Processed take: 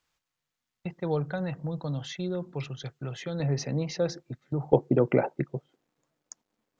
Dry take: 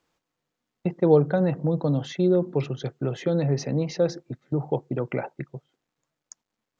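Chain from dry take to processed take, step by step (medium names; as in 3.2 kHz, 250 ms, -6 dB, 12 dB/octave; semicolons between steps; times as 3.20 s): peaking EQ 350 Hz -13.5 dB 2.6 oct, from 3.40 s -6 dB, from 4.73 s +6.5 dB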